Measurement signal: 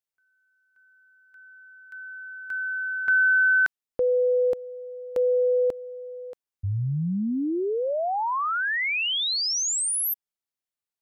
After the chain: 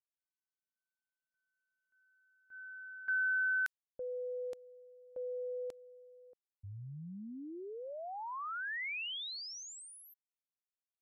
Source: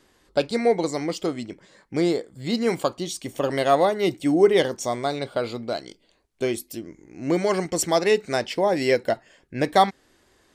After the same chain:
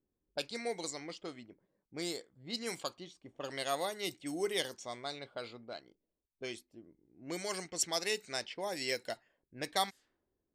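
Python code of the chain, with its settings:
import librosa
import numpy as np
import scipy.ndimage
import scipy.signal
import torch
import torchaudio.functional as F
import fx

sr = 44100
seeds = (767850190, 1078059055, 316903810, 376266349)

y = fx.env_lowpass(x, sr, base_hz=310.0, full_db=-17.5)
y = scipy.signal.lfilter([1.0, -0.9], [1.0], y)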